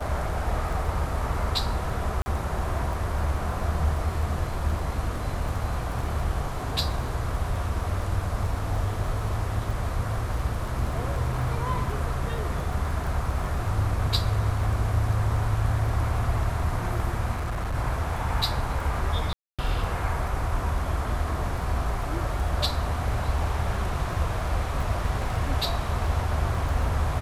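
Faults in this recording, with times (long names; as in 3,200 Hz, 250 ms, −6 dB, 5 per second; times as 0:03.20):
surface crackle 12 per second −32 dBFS
0:02.22–0:02.26: drop-out 40 ms
0:17.32–0:17.75: clipping −25.5 dBFS
0:19.33–0:19.59: drop-out 256 ms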